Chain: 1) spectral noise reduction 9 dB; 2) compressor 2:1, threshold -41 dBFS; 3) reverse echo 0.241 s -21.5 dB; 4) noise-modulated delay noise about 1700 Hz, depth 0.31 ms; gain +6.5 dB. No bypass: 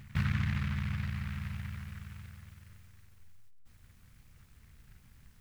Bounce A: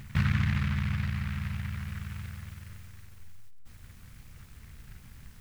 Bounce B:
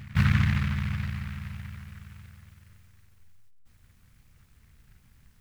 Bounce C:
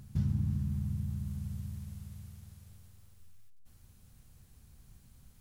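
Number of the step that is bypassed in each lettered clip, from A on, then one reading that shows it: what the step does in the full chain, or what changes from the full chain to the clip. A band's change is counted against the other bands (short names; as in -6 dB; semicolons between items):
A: 1, momentary loudness spread change +4 LU; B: 2, loudness change +8.0 LU; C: 4, 2 kHz band -17.5 dB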